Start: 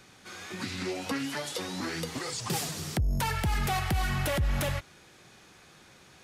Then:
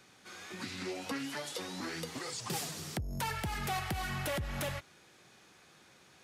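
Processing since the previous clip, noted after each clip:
low-shelf EQ 76 Hz −12 dB
level −5 dB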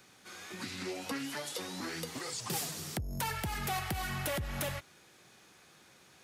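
high-shelf EQ 11,000 Hz +8.5 dB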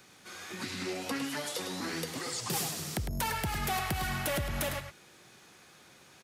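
slap from a distant wall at 18 metres, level −7 dB
level +2.5 dB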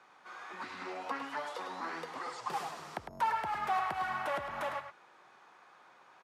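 resonant band-pass 1,000 Hz, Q 2.1
level +6 dB

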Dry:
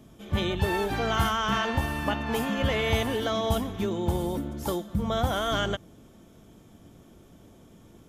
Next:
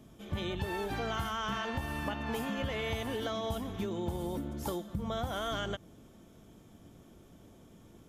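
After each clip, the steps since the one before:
downward compressor, threshold −28 dBFS, peak gain reduction 9 dB
level −3.5 dB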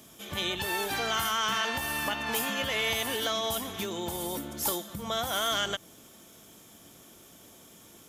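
spectral tilt +3.5 dB per octave
in parallel at −5 dB: asymmetric clip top −34 dBFS
on the sum: level +2 dB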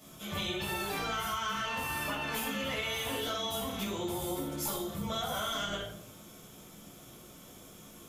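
rectangular room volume 650 cubic metres, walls furnished, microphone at 6.8 metres
downward compressor, threshold −24 dBFS, peak gain reduction 8.5 dB
level −7.5 dB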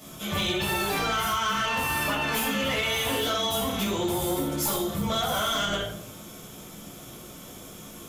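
hard clipping −29.5 dBFS, distortion −19 dB
level +8.5 dB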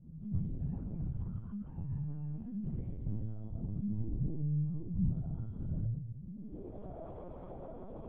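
multi-voice chorus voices 2, 0.34 Hz, delay 19 ms, depth 1.2 ms
low-pass filter sweep 130 Hz → 680 Hz, 0:06.22–0:06.81
linear-prediction vocoder at 8 kHz pitch kept
level −1 dB

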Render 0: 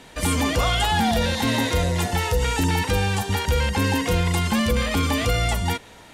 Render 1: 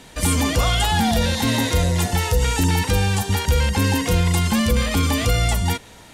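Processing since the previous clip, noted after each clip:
bass and treble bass +4 dB, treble +5 dB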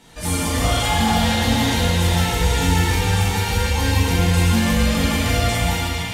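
feedback echo with a band-pass in the loop 454 ms, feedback 71%, band-pass 2,800 Hz, level −3.5 dB
dense smooth reverb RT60 2.5 s, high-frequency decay 0.8×, DRR −8 dB
level −8.5 dB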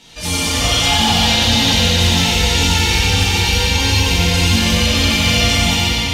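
flat-topped bell 3,900 Hz +9.5 dB
echo with a time of its own for lows and highs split 480 Hz, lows 536 ms, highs 91 ms, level −4.5 dB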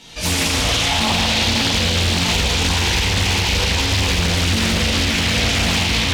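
brickwall limiter −11 dBFS, peak gain reduction 9 dB
highs frequency-modulated by the lows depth 0.73 ms
level +2.5 dB

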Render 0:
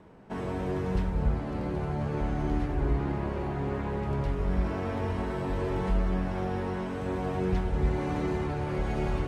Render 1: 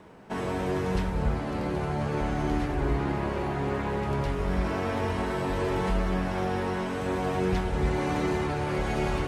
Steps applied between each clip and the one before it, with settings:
spectral tilt +1.5 dB per octave
level +5 dB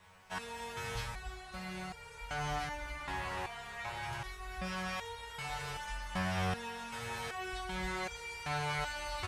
guitar amp tone stack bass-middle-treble 10-0-10
single-tap delay 281 ms −10 dB
step-sequenced resonator 2.6 Hz 93–470 Hz
level +12 dB

